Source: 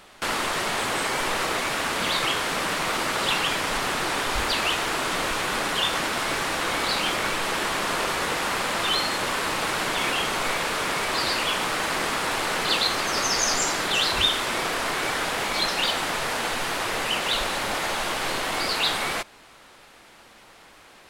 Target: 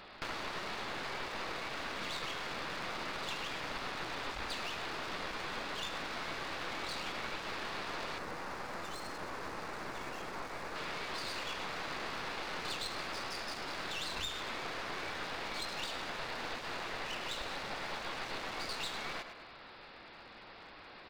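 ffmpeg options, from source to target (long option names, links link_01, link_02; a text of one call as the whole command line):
ffmpeg -i in.wav -filter_complex "[0:a]bandreject=frequency=3100:width=16,aecho=1:1:104|208|312:0.237|0.0735|0.0228,acompressor=threshold=-37dB:ratio=2.5,aresample=11025,aresample=44100,aeval=exprs='clip(val(0),-1,0.00596)':channel_layout=same,asettb=1/sr,asplit=3[link_01][link_02][link_03];[link_01]atrim=end=8.184[link_04];[link_02]atrim=start=8.18:end=10.76,asetpts=PTS-STARTPTS,afade=type=in:duration=0.004:curve=qsin,afade=type=out:start_time=2.576:duration=0.004:curve=qsin,equalizer=frequency=3300:width_type=o:width=1.3:gain=-9.5[link_05];[link_03]atrim=start=10.756[link_06];[link_04][link_05]acrossfade=duration=0.004:curve1=hsin:curve2=qsin[link_07];[link_07][link_06]acrossfade=duration=0.004:curve1=qsin:curve2=hsin,volume=-2dB" out.wav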